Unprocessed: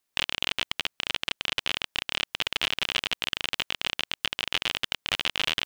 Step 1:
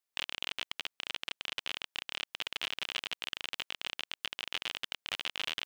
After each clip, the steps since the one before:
low-shelf EQ 210 Hz −8.5 dB
level −9 dB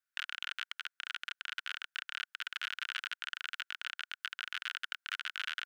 four-pole ladder high-pass 1,400 Hz, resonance 80%
level +6 dB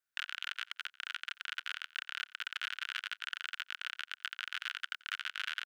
repeating echo 88 ms, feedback 33%, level −22 dB

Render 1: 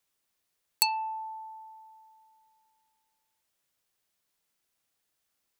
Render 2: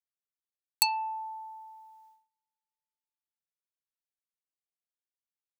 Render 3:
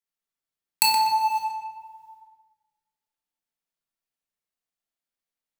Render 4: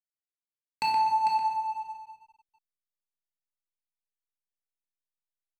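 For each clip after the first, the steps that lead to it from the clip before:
noise gate −59 dBFS, range −27 dB
in parallel at −11 dB: log-companded quantiser 2 bits; on the sum: tape delay 124 ms, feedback 39%, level −3.5 dB, low-pass 4,400 Hz; rectangular room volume 510 cubic metres, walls mixed, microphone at 1.6 metres
head-to-tape spacing loss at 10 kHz 30 dB; slack as between gear wheels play −40.5 dBFS; single-tap delay 448 ms −8.5 dB

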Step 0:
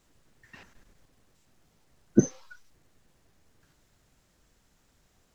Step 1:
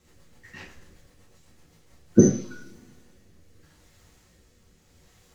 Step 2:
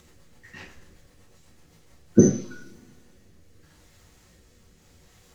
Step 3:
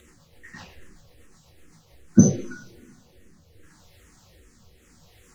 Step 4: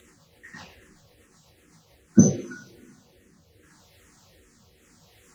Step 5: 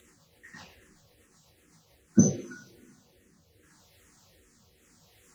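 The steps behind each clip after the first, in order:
rotating-speaker cabinet horn 8 Hz, later 0.8 Hz, at 0:01.52; coupled-rooms reverb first 0.39 s, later 1.8 s, from −26 dB, DRR −4.5 dB; level +4.5 dB
upward compression, threshold −50 dBFS
frequency shifter mixed with the dry sound −2.5 Hz; level +4.5 dB
high-pass filter 110 Hz 6 dB per octave
high-shelf EQ 5,600 Hz +4 dB; level −5 dB

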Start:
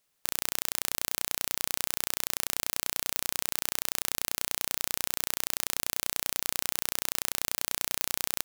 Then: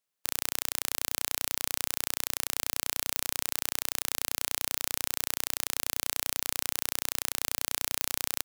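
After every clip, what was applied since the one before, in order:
low-shelf EQ 76 Hz −10 dB
expander for the loud parts 1.5 to 1, over −53 dBFS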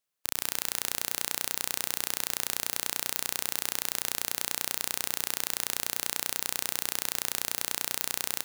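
convolution reverb RT60 2.5 s, pre-delay 109 ms, DRR 14 dB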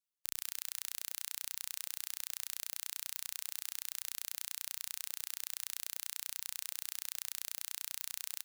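guitar amp tone stack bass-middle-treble 5-5-5
reverb reduction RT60 1.8 s
level −1.5 dB

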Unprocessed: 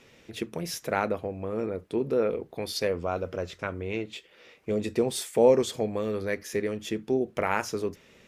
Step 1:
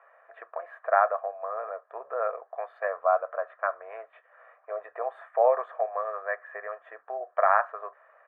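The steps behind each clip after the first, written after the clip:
elliptic band-pass filter 660–1,600 Hz, stop band 60 dB
comb filter 1.7 ms, depth 55%
level +8 dB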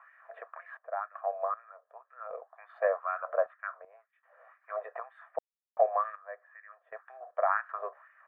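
auto-filter high-pass sine 2 Hz 470–1,900 Hz
sample-and-hold tremolo 2.6 Hz, depth 100%
level −2 dB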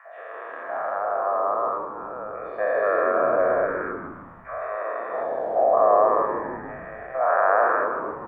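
every bin's largest magnitude spread in time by 480 ms
echo with shifted repeats 157 ms, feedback 54%, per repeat −94 Hz, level −7 dB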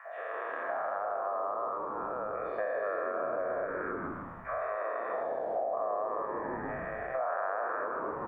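downward compressor 6 to 1, threshold −31 dBFS, peak gain reduction 16.5 dB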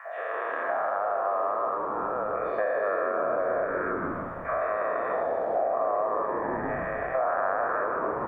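echo machine with several playback heads 297 ms, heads first and third, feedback 70%, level −17 dB
level +6 dB

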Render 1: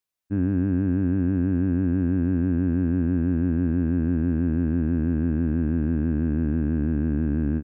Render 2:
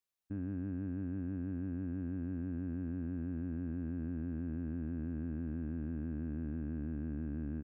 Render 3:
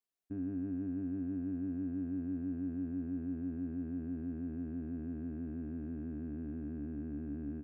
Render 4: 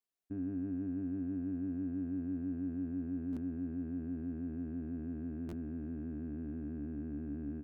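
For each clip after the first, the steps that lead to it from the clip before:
brickwall limiter −25.5 dBFS, peak gain reduction 11.5 dB; level −5.5 dB
hollow resonant body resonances 280/400/690 Hz, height 10 dB, ringing for 70 ms; level −5 dB
buffer that repeats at 0:03.32/0:05.48, samples 512, times 3

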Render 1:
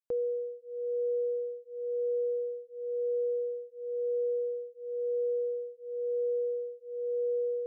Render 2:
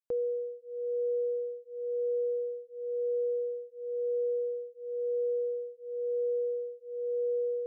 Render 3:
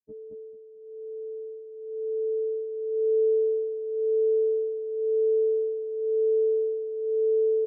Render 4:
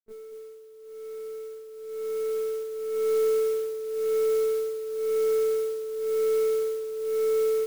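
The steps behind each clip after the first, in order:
no processing that can be heard
every partial snapped to a pitch grid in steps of 6 semitones; low-pass filter sweep 230 Hz → 470 Hz, 0:00.70–0:03.19; on a send: repeating echo 220 ms, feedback 22%, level −3.5 dB; on the sum: level −1.5 dB
running median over 41 samples; one-pitch LPC vocoder at 8 kHz 220 Hz; noise that follows the level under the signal 21 dB

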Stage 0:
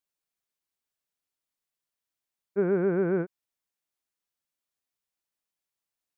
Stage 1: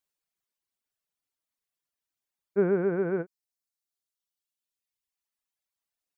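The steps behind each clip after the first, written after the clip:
reverb reduction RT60 1.9 s
level +2 dB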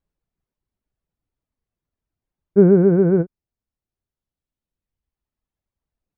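spectral tilt −5.5 dB per octave
level +3.5 dB

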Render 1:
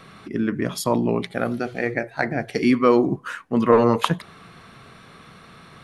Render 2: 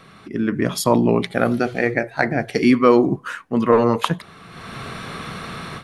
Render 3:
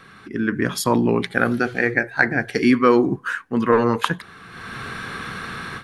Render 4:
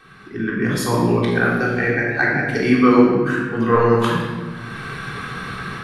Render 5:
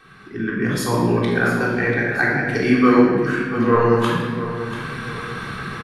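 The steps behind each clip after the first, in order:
automatic gain control gain up to 15.5 dB; level −1 dB
thirty-one-band graphic EQ 160 Hz −4 dB, 630 Hz −8 dB, 1,600 Hz +9 dB; level −1 dB
rectangular room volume 1,300 cubic metres, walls mixed, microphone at 3.6 metres; level −5.5 dB
repeating echo 689 ms, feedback 38%, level −12 dB; level −1 dB

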